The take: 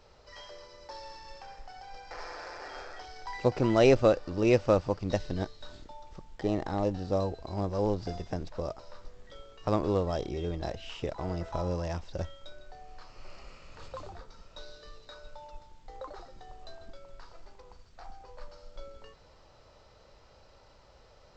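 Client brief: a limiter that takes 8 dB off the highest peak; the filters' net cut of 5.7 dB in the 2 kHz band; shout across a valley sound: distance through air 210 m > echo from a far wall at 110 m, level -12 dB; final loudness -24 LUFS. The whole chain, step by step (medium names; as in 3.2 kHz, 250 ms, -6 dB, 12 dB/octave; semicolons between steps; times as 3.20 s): peaking EQ 2 kHz -4.5 dB; peak limiter -18 dBFS; distance through air 210 m; echo from a far wall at 110 m, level -12 dB; trim +10 dB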